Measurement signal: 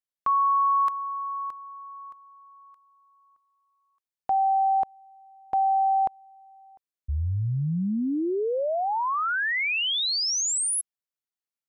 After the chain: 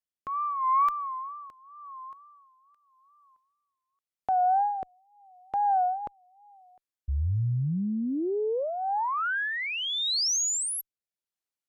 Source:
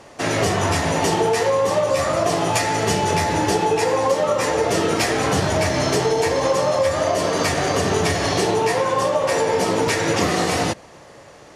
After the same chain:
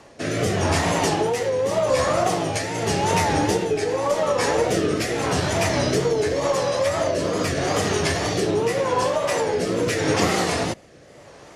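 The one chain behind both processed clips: wow and flutter 2.1 Hz 110 cents; rotary speaker horn 0.85 Hz; added harmonics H 2 -20 dB, 6 -44 dB, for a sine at -5.5 dBFS

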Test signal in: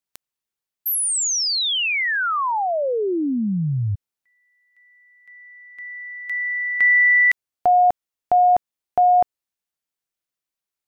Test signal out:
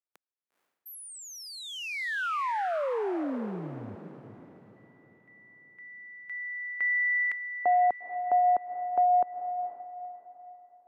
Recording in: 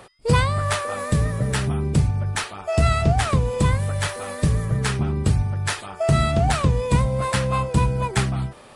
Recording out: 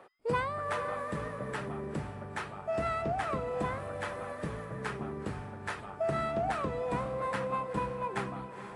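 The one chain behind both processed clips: three-band isolator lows -18 dB, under 220 Hz, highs -15 dB, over 2200 Hz; diffused feedback echo 0.474 s, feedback 41%, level -10 dB; gain -8 dB

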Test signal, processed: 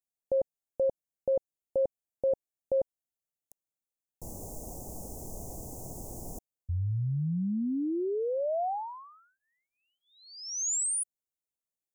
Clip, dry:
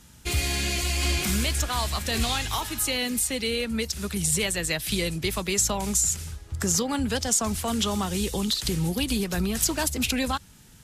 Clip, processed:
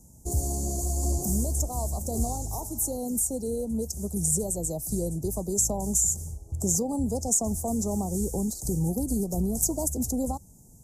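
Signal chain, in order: elliptic band-stop 750–6600 Hz, stop band 50 dB

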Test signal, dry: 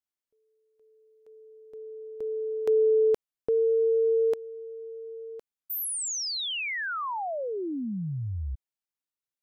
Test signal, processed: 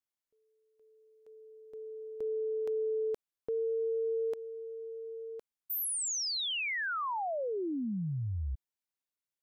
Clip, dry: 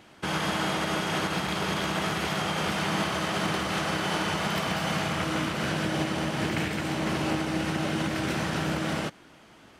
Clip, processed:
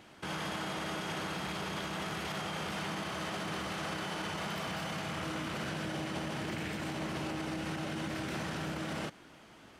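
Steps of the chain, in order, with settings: limiter -26.5 dBFS; gain -2.5 dB

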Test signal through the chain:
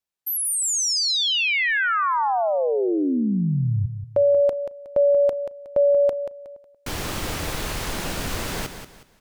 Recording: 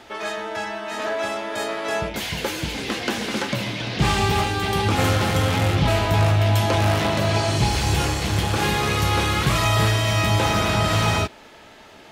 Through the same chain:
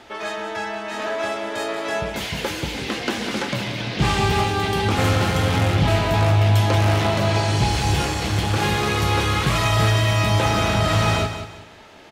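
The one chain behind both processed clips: high shelf 9300 Hz -5 dB; feedback echo 0.183 s, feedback 31%, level -9.5 dB

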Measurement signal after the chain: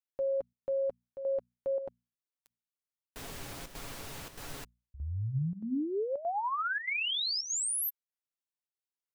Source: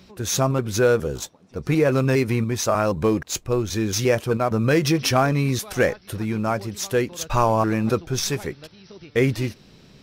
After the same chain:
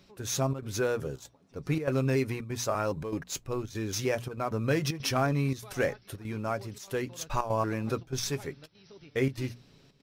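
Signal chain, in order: notches 60/120/180/240 Hz; comb 7.2 ms, depth 33%; chopper 1.6 Hz, depth 65%, duty 85%; gain -9 dB

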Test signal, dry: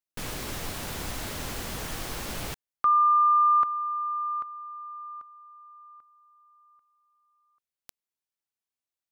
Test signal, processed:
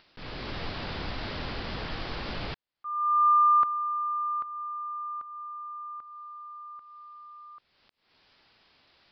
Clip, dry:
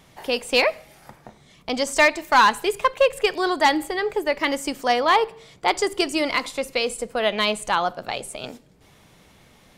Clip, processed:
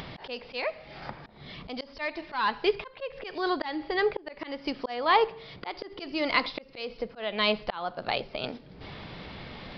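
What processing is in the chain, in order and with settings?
auto swell 0.444 s; upward compressor, threshold -30 dBFS; downsampling 11025 Hz

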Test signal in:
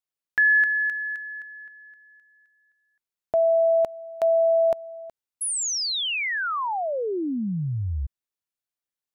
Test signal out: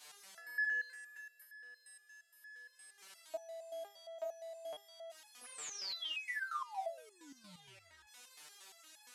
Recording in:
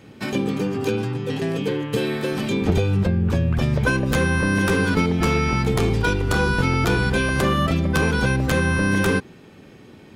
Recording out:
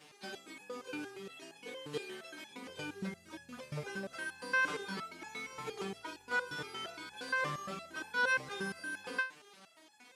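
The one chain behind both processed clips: delta modulation 64 kbps, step -35.5 dBFS; weighting filter A; stepped resonator 8.6 Hz 150–850 Hz; gain -1 dB

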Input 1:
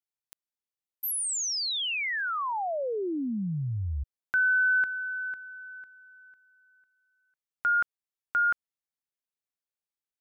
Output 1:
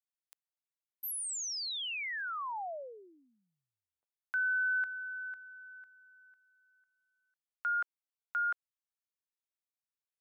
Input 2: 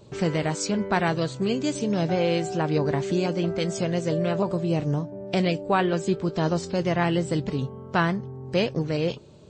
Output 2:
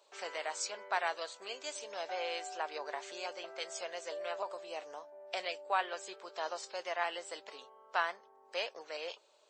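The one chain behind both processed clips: HPF 630 Hz 24 dB/oct; gain -7.5 dB

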